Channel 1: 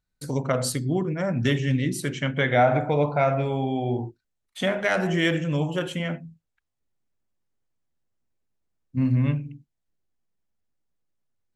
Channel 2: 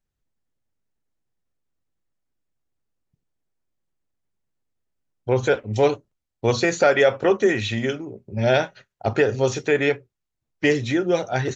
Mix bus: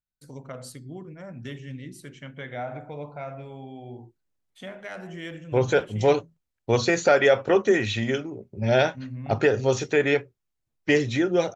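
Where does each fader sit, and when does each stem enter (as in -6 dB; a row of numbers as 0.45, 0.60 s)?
-14.5, -1.5 dB; 0.00, 0.25 s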